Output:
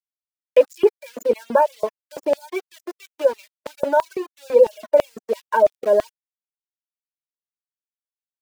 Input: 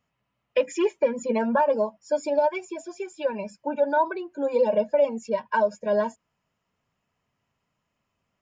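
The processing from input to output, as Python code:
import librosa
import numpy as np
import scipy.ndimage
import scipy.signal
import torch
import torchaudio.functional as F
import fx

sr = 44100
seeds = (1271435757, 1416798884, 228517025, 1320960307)

y = np.where(np.abs(x) >= 10.0 ** (-34.0 / 20.0), x, 0.0)
y = fx.peak_eq(y, sr, hz=420.0, db=10.5, octaves=1.9)
y = fx.filter_lfo_highpass(y, sr, shape='square', hz=3.0, low_hz=370.0, high_hz=2900.0, q=0.78)
y = fx.dereverb_blind(y, sr, rt60_s=0.77)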